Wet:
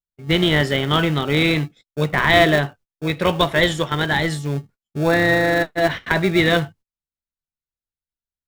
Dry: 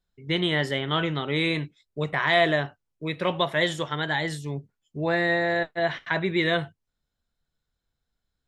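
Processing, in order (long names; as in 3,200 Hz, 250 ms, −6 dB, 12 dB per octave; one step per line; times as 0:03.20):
noise gate −50 dBFS, range −27 dB
in parallel at −10 dB: sample-rate reduction 1,000 Hz, jitter 0%
on the sum: level +6.5 dB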